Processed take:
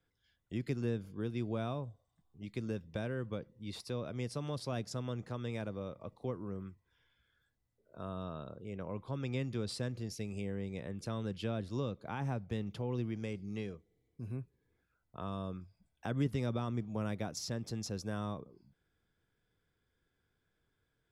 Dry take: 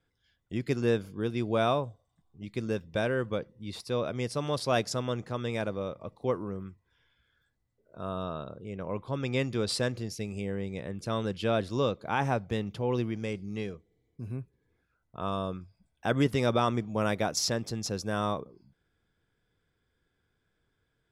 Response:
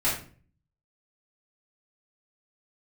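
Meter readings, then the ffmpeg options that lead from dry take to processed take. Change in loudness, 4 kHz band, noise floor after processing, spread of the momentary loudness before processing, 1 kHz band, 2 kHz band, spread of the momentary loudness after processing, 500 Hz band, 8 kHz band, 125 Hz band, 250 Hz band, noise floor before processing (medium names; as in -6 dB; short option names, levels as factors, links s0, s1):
-8.0 dB, -11.0 dB, -81 dBFS, 12 LU, -12.5 dB, -12.0 dB, 9 LU, -10.5 dB, -10.5 dB, -4.0 dB, -6.0 dB, -78 dBFS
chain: -filter_complex "[0:a]acrossover=split=270[s0][s1];[s1]acompressor=threshold=0.0126:ratio=3[s2];[s0][s2]amix=inputs=2:normalize=0,volume=0.631"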